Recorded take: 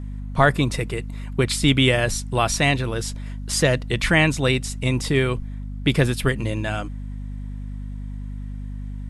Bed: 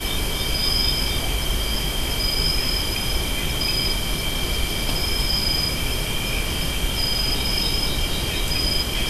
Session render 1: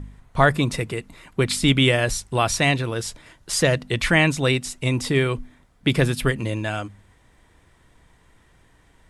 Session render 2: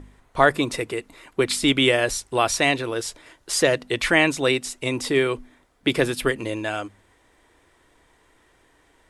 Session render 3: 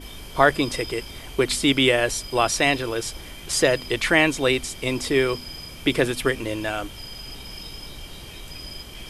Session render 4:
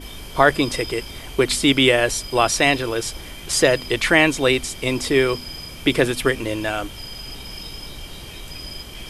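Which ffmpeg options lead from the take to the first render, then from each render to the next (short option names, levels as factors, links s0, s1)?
-af "bandreject=f=50:t=h:w=4,bandreject=f=100:t=h:w=4,bandreject=f=150:t=h:w=4,bandreject=f=200:t=h:w=4,bandreject=f=250:t=h:w=4"
-af "lowshelf=f=240:t=q:w=1.5:g=-8.5"
-filter_complex "[1:a]volume=0.168[s0];[0:a][s0]amix=inputs=2:normalize=0"
-af "volume=1.41,alimiter=limit=0.891:level=0:latency=1"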